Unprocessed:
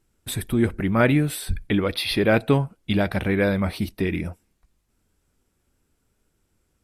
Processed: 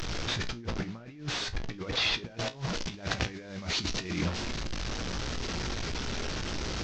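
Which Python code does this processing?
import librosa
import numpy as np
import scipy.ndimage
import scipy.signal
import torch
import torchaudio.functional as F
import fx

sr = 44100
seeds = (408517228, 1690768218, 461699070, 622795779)

y = fx.delta_mod(x, sr, bps=32000, step_db=-28.5)
y = fx.high_shelf(y, sr, hz=3700.0, db=8.5, at=(2.26, 4.26))
y = fx.over_compress(y, sr, threshold_db=-28.0, ratio=-0.5)
y = fx.comb_fb(y, sr, f0_hz=59.0, decay_s=0.2, harmonics='all', damping=0.0, mix_pct=70)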